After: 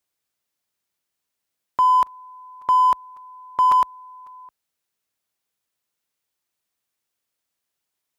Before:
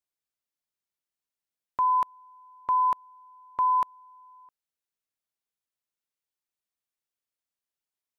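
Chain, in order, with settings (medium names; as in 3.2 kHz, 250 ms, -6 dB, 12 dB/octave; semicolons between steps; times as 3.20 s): high-pass 44 Hz 12 dB/octave; in parallel at -5.5 dB: saturation -36.5 dBFS, distortion -7 dB; on the sum: crackling interface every 0.55 s, samples 256, repeat, from 0.41 s; trim +6.5 dB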